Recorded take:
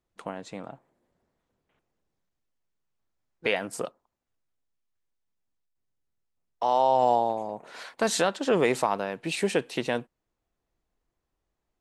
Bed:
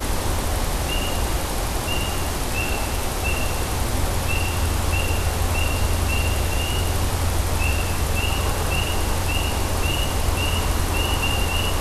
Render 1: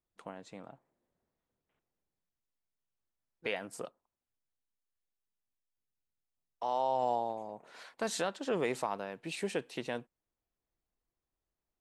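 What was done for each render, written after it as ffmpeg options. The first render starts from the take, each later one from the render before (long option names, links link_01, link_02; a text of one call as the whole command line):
ffmpeg -i in.wav -af "volume=-9.5dB" out.wav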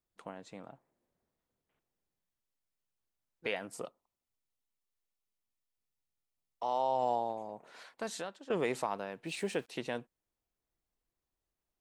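ffmpeg -i in.wav -filter_complex "[0:a]asettb=1/sr,asplit=3[link_01][link_02][link_03];[link_01]atrim=end=3.734[link_04];[link_02]atrim=start=3.73:end=7.06,asetpts=PTS-STARTPTS,afade=type=in:duration=0.004:curve=qsin,afade=type=out:start_time=3.326:duration=0.004:curve=qsin,bandreject=frequency=1600:width=7[link_05];[link_03]atrim=start=7.056[link_06];[link_04][link_05]acrossfade=duration=0.004:curve1=hsin:curve2=qsin[link_07];[link_07][link_06]acrossfade=duration=0.004:curve1=qsin:curve2=hsin,asplit=3[link_08][link_09][link_10];[link_08]afade=type=out:start_time=9.25:duration=0.02[link_11];[link_09]aeval=exprs='val(0)*gte(abs(val(0)),0.00141)':channel_layout=same,afade=type=in:start_time=9.25:duration=0.02,afade=type=out:start_time=9.68:duration=0.02[link_12];[link_10]afade=type=in:start_time=9.68:duration=0.02[link_13];[link_11][link_12][link_13]amix=inputs=3:normalize=0,asplit=2[link_14][link_15];[link_14]atrim=end=8.5,asetpts=PTS-STARTPTS,afade=type=out:start_time=7.66:duration=0.84:silence=0.188365[link_16];[link_15]atrim=start=8.5,asetpts=PTS-STARTPTS,afade=type=in:duration=0.004:curve=hsin:silence=0.188365[link_17];[link_16][link_17]concat=n=2:v=0:a=1" out.wav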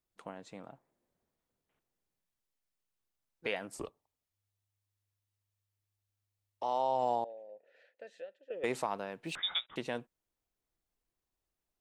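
ffmpeg -i in.wav -filter_complex "[0:a]asettb=1/sr,asplit=3[link_01][link_02][link_03];[link_01]atrim=end=3.754[link_04];[link_02]atrim=start=3.75:end=6.63,asetpts=PTS-STARTPTS,afade=type=in:duration=0.004:curve=qsin,afade=type=out:start_time=2.876:duration=0.004:curve=qsin,afreqshift=-100[link_05];[link_03]atrim=start=6.626[link_06];[link_04][link_05]acrossfade=duration=0.004:curve1=hsin:curve2=qsin[link_07];[link_07][link_06]acrossfade=duration=0.004:curve1=qsin:curve2=hsin,asettb=1/sr,asplit=3[link_08][link_09][link_10];[link_08]atrim=end=7.244[link_11];[link_09]atrim=start=7.24:end=8.64,asetpts=PTS-STARTPTS,afade=type=in:duration=0.004:curve=qsin,afade=type=out:start_time=1.396:duration=0.004:curve=qsin,asplit=3[link_12][link_13][link_14];[link_12]bandpass=frequency=530:width_type=q:width=8,volume=0dB[link_15];[link_13]bandpass=frequency=1840:width_type=q:width=8,volume=-6dB[link_16];[link_14]bandpass=frequency=2480:width_type=q:width=8,volume=-9dB[link_17];[link_15][link_16][link_17]amix=inputs=3:normalize=0[link_18];[link_10]atrim=start=8.636[link_19];[link_11][link_18]acrossfade=duration=0.004:curve1=hsin:curve2=qsin[link_20];[link_20][link_19]acrossfade=duration=0.004:curve1=qsin:curve2=hsin,asettb=1/sr,asplit=3[link_21][link_22][link_23];[link_21]atrim=end=9.354[link_24];[link_22]atrim=start=9.35:end=9.76,asetpts=PTS-STARTPTS,afade=type=in:duration=0.004:curve=qsin,afade=type=out:start_time=0.406:duration=0.004:curve=qsin,lowpass=frequency=3300:width_type=q:width=0.5098,lowpass=frequency=3300:width_type=q:width=0.6013,lowpass=frequency=3300:width_type=q:width=0.9,lowpass=frequency=3300:width_type=q:width=2.563,afreqshift=-3900[link_25];[link_23]atrim=start=9.756[link_26];[link_24][link_25]acrossfade=duration=0.004:curve1=hsin:curve2=qsin[link_27];[link_27][link_26]acrossfade=duration=0.004:curve1=qsin:curve2=hsin" out.wav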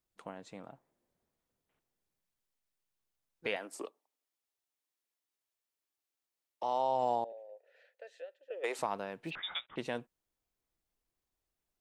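ffmpeg -i in.wav -filter_complex "[0:a]asettb=1/sr,asplit=3[link_01][link_02][link_03];[link_01]atrim=end=3.564[link_04];[link_02]atrim=start=3.56:end=6.63,asetpts=PTS-STARTPTS,afade=type=in:duration=0.004:curve=qsin,afade=type=out:start_time=3.066:duration=0.004:curve=qsin,highpass=frequency=260:width=0.5412,highpass=frequency=260:width=1.3066[link_05];[link_03]atrim=start=6.626[link_06];[link_04][link_05]acrossfade=duration=0.004:curve1=hsin:curve2=qsin[link_07];[link_07][link_06]acrossfade=duration=0.004:curve1=qsin:curve2=hsin,asettb=1/sr,asplit=3[link_08][link_09][link_10];[link_08]atrim=end=7.324[link_11];[link_09]atrim=start=7.32:end=8.79,asetpts=PTS-STARTPTS,afade=type=in:duration=0.004:curve=qsin,afade=type=out:start_time=1.466:duration=0.004:curve=qsin,highpass=frequency=410:width=0.5412,highpass=frequency=410:width=1.3066[link_12];[link_10]atrim=start=8.786[link_13];[link_11][link_12]acrossfade=duration=0.004:curve1=hsin:curve2=qsin[link_14];[link_14][link_13]acrossfade=duration=0.004:curve1=qsin:curve2=hsin,asplit=3[link_15][link_16][link_17];[link_15]afade=type=out:start_time=9.29:duration=0.02[link_18];[link_16]lowpass=frequency=3100:width=0.5412,lowpass=frequency=3100:width=1.3066,afade=type=in:start_time=9.29:duration=0.02,afade=type=out:start_time=9.77:duration=0.02[link_19];[link_17]afade=type=in:start_time=9.77:duration=0.02[link_20];[link_18][link_19][link_20]amix=inputs=3:normalize=0" out.wav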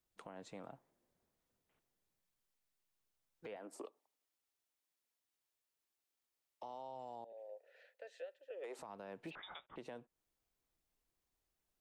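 ffmpeg -i in.wav -filter_complex "[0:a]acrossover=split=320|1200[link_01][link_02][link_03];[link_01]acompressor=threshold=-53dB:ratio=4[link_04];[link_02]acompressor=threshold=-43dB:ratio=4[link_05];[link_03]acompressor=threshold=-56dB:ratio=4[link_06];[link_04][link_05][link_06]amix=inputs=3:normalize=0,alimiter=level_in=14.5dB:limit=-24dB:level=0:latency=1:release=154,volume=-14.5dB" out.wav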